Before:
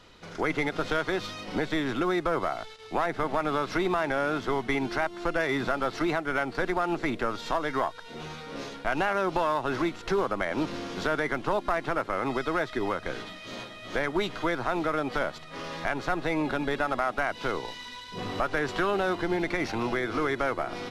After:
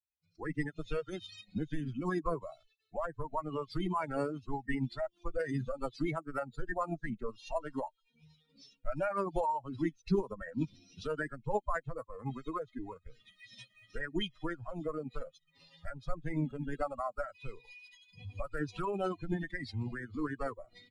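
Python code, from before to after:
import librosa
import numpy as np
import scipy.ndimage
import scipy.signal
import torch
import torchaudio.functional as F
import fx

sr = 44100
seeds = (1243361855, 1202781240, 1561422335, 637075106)

y = fx.bin_expand(x, sr, power=3.0)
y = fx.low_shelf(y, sr, hz=410.0, db=5.5)
y = fx.formant_shift(y, sr, semitones=-3)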